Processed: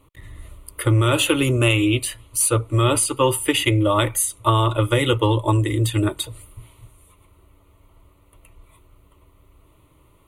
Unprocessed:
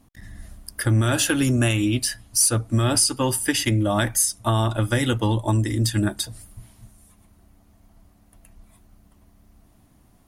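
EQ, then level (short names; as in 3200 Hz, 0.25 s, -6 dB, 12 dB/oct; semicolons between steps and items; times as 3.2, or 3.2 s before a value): low shelf 83 Hz -9 dB; high shelf 6700 Hz -8.5 dB; fixed phaser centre 1100 Hz, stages 8; +8.5 dB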